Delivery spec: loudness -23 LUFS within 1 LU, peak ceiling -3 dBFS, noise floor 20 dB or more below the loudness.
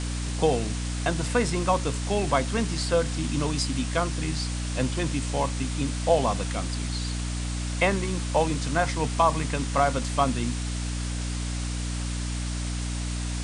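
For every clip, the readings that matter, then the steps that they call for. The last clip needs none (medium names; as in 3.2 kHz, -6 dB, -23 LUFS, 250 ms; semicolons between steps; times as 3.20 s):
hum 60 Hz; highest harmonic 300 Hz; hum level -28 dBFS; noise floor -30 dBFS; noise floor target -47 dBFS; loudness -27.0 LUFS; peak level -8.0 dBFS; loudness target -23.0 LUFS
-> de-hum 60 Hz, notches 5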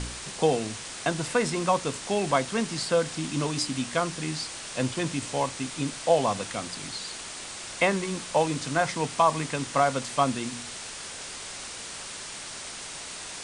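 hum not found; noise floor -39 dBFS; noise floor target -49 dBFS
-> noise reduction 10 dB, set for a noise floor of -39 dBFS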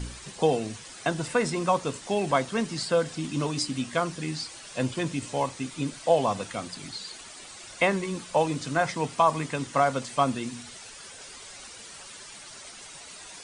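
noise floor -45 dBFS; noise floor target -48 dBFS
-> noise reduction 6 dB, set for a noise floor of -45 dBFS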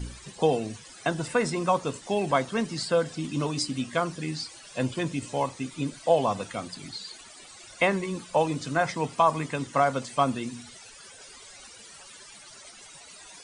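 noise floor -48 dBFS; loudness -28.0 LUFS; peak level -9.5 dBFS; loudness target -23.0 LUFS
-> trim +5 dB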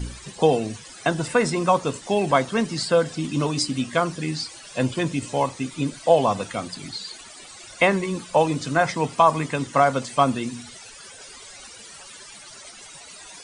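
loudness -23.0 LUFS; peak level -4.5 dBFS; noise floor -43 dBFS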